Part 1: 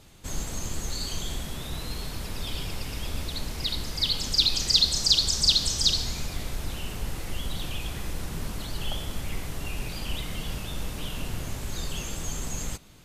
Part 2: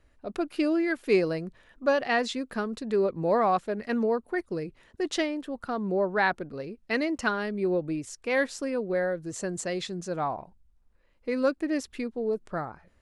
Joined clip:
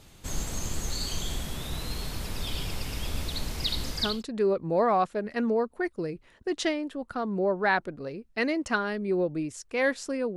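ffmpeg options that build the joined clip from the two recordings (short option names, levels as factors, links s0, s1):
-filter_complex "[0:a]apad=whole_dur=10.36,atrim=end=10.36,atrim=end=4.23,asetpts=PTS-STARTPTS[s0];[1:a]atrim=start=2.34:end=8.89,asetpts=PTS-STARTPTS[s1];[s0][s1]acrossfade=d=0.42:c1=qsin:c2=qsin"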